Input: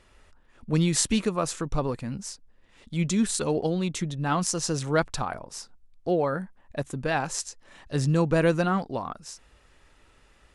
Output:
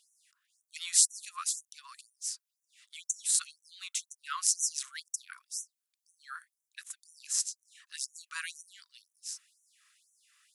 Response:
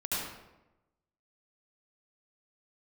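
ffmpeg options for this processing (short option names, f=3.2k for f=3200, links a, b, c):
-af "crystalizer=i=3:c=0,afftfilt=real='re*gte(b*sr/1024,960*pow(5800/960,0.5+0.5*sin(2*PI*2*pts/sr)))':imag='im*gte(b*sr/1024,960*pow(5800/960,0.5+0.5*sin(2*PI*2*pts/sr)))':win_size=1024:overlap=0.75,volume=-8.5dB"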